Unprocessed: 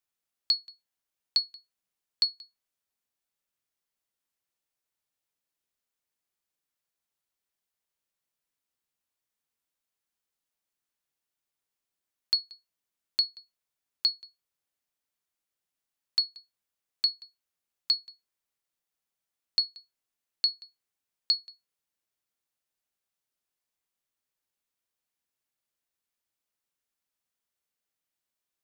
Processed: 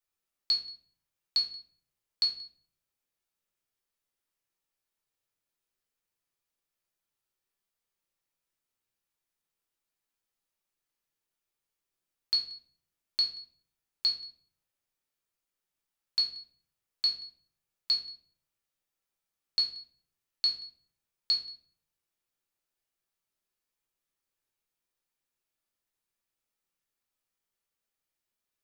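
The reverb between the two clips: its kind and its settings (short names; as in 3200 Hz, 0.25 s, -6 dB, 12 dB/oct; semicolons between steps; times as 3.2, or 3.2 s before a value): shoebox room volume 59 m³, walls mixed, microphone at 0.77 m; gain -3.5 dB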